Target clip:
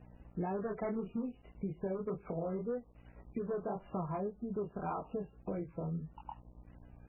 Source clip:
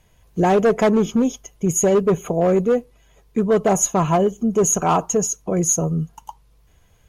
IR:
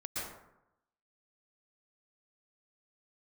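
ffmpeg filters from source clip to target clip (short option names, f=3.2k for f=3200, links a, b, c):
-af "lowshelf=f=120:g=3.5,flanger=delay=20:depth=6.3:speed=1.8,aeval=exprs='val(0)+0.00355*(sin(2*PI*60*n/s)+sin(2*PI*2*60*n/s)/2+sin(2*PI*3*60*n/s)/3+sin(2*PI*4*60*n/s)/4+sin(2*PI*5*60*n/s)/5)':c=same,acrusher=bits=7:mix=0:aa=0.5,aemphasis=mode=reproduction:type=50fm,acompressor=threshold=-30dB:ratio=4,volume=-6.5dB" -ar 11025 -c:a libmp3lame -b:a 8k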